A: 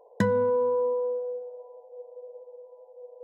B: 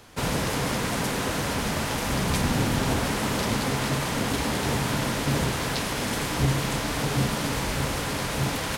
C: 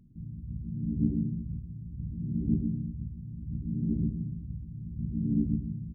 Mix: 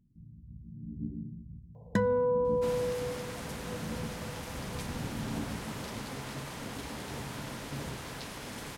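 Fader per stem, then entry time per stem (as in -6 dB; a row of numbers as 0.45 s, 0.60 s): -3.5 dB, -14.0 dB, -10.5 dB; 1.75 s, 2.45 s, 0.00 s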